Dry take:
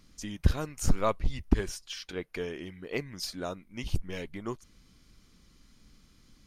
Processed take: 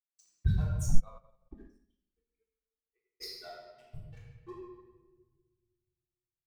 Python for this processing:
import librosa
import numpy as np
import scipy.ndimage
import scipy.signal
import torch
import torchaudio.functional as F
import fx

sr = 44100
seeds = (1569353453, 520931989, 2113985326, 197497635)

y = fx.bin_expand(x, sr, power=3.0)
y = fx.peak_eq(y, sr, hz=2700.0, db=-11.0, octaves=0.25)
y = np.sign(y) * np.maximum(np.abs(y) - 10.0 ** (-52.5 / 20.0), 0.0)
y = fx.room_shoebox(y, sr, seeds[0], volume_m3=1100.0, walls='mixed', distance_m=3.6)
y = fx.upward_expand(y, sr, threshold_db=-36.0, expansion=2.5, at=(0.98, 3.2), fade=0.02)
y = y * 10.0 ** (-5.5 / 20.0)